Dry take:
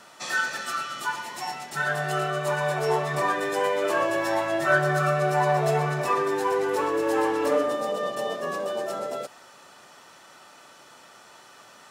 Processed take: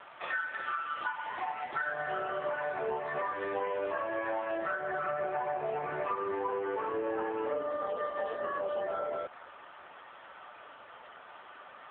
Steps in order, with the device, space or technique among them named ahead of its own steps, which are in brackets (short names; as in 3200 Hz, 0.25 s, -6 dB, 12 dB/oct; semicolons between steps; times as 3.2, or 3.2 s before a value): voicemail (BPF 340–2600 Hz; compressor 10:1, threshold -34 dBFS, peak gain reduction 18 dB; gain +4.5 dB; AMR-NB 6.7 kbps 8000 Hz)